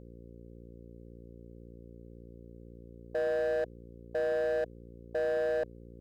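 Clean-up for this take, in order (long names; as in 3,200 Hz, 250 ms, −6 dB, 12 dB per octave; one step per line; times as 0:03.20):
clipped peaks rebuilt −27 dBFS
hum removal 58.1 Hz, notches 9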